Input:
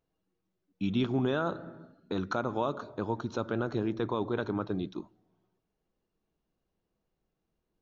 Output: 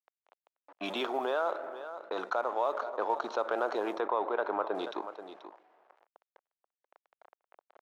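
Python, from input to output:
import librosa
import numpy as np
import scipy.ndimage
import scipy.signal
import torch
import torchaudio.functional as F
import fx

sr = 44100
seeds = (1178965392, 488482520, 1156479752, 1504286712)

y = fx.law_mismatch(x, sr, coded='A')
y = fx.env_lowpass(y, sr, base_hz=1900.0, full_db=-26.0)
y = scipy.signal.sosfilt(scipy.signal.butter(4, 630.0, 'highpass', fs=sr, output='sos'), y)
y = fx.tilt_shelf(y, sr, db=9.5, hz=970.0)
y = y + 10.0 ** (-23.0 / 20.0) * np.pad(y, (int(483 * sr / 1000.0), 0))[:len(y)]
y = fx.rider(y, sr, range_db=10, speed_s=0.5)
y = fx.lowpass(y, sr, hz=2700.0, slope=12, at=(4.0, 4.75))
y = fx.env_flatten(y, sr, amount_pct=50)
y = F.gain(torch.from_numpy(y), 4.0).numpy()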